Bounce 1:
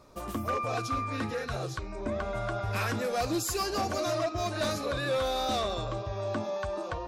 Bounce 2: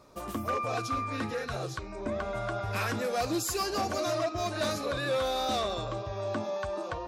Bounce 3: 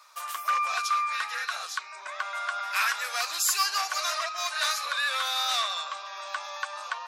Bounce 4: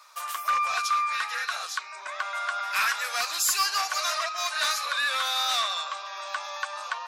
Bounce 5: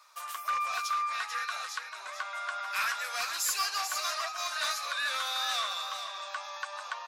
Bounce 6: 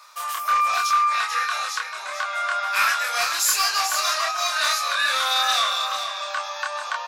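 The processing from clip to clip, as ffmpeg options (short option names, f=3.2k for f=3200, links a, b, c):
-af "lowshelf=f=73:g=-7"
-af "highpass=f=1.1k:w=0.5412,highpass=f=1.1k:w=1.3066,volume=8.5dB"
-af "asoftclip=type=tanh:threshold=-17dB,volume=2dB"
-af "aecho=1:1:442:0.398,volume=-6dB"
-filter_complex "[0:a]areverse,acompressor=mode=upward:threshold=-43dB:ratio=2.5,areverse,asplit=2[a][b];[b]adelay=27,volume=-2dB[c];[a][c]amix=inputs=2:normalize=0,volume=8dB"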